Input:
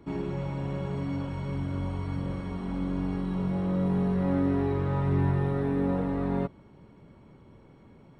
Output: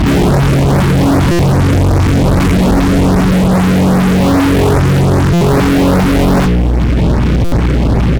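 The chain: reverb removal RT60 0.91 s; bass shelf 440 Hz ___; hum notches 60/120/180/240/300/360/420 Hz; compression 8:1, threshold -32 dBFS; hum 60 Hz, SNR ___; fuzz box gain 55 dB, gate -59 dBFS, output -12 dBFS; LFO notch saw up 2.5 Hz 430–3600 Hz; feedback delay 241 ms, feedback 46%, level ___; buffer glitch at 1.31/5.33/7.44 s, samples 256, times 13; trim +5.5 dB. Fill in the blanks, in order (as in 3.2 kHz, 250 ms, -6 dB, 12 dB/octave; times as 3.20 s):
+9.5 dB, 11 dB, -21 dB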